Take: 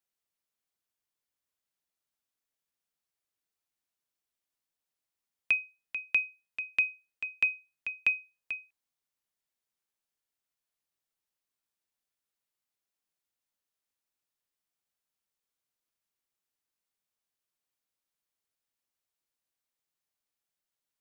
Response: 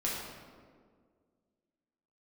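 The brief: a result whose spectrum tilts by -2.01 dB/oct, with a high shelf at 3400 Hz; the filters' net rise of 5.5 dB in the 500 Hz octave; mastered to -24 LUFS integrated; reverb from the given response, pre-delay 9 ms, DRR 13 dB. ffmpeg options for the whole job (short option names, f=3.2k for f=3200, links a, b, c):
-filter_complex "[0:a]equalizer=f=500:t=o:g=6.5,highshelf=f=3.4k:g=7,asplit=2[a][b];[1:a]atrim=start_sample=2205,adelay=9[c];[b][c]afir=irnorm=-1:irlink=0,volume=-18.5dB[d];[a][d]amix=inputs=2:normalize=0,volume=4.5dB"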